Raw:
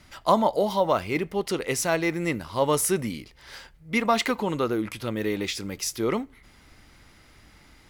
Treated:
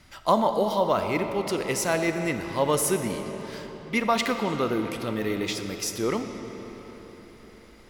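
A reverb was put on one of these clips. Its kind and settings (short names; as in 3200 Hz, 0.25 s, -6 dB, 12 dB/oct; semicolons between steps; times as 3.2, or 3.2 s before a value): digital reverb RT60 4.7 s, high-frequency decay 0.7×, pre-delay 5 ms, DRR 6.5 dB; gain -1 dB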